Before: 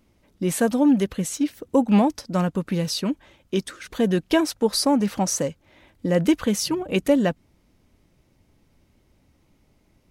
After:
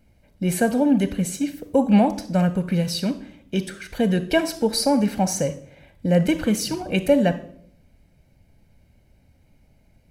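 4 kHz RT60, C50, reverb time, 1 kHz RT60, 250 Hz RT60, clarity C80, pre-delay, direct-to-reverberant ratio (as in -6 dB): 0.50 s, 13.5 dB, 0.65 s, 0.50 s, 0.80 s, 17.5 dB, 29 ms, 11.5 dB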